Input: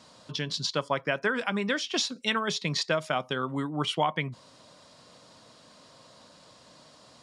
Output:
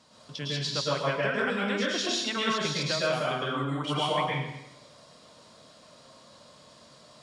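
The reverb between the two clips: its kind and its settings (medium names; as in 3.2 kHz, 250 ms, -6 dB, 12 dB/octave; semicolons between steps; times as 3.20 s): plate-style reverb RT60 0.88 s, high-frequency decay 1×, pre-delay 95 ms, DRR -5.5 dB; trim -6 dB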